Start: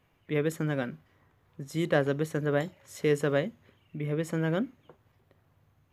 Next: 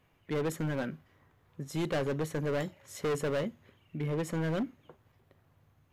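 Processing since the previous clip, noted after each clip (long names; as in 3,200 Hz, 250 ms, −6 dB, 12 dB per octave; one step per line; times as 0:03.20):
gain into a clipping stage and back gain 27.5 dB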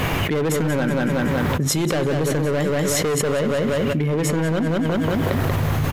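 repeating echo 186 ms, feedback 32%, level −7.5 dB
envelope flattener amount 100%
level +7 dB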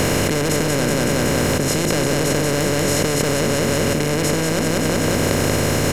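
compressor on every frequency bin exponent 0.2
level −5.5 dB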